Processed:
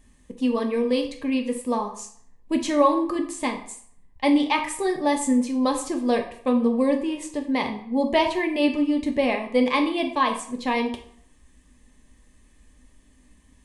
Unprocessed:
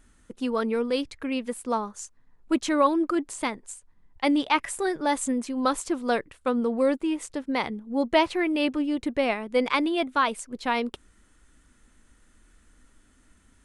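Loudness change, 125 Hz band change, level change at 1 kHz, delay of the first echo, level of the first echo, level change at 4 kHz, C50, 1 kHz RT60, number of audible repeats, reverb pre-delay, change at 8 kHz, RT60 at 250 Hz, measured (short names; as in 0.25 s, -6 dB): +2.5 dB, n/a, +1.5 dB, none, none, +1.5 dB, 9.5 dB, 0.60 s, none, 3 ms, +1.5 dB, 0.55 s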